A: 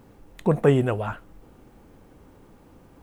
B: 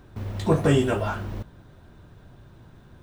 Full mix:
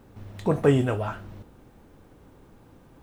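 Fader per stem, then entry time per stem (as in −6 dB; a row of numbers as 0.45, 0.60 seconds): −2.0, −10.0 decibels; 0.00, 0.00 seconds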